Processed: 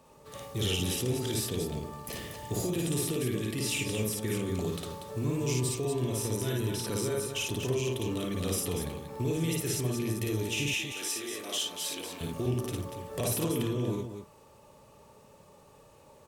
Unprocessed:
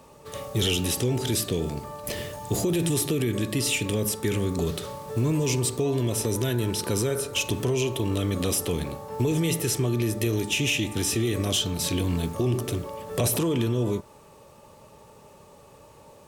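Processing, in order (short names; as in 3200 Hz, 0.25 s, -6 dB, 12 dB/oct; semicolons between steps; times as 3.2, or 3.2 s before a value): 10.68–12.21 HPF 520 Hz 12 dB/oct; on a send: loudspeakers at several distances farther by 19 m -1 dB, 82 m -7 dB; on the sum: gain -8.5 dB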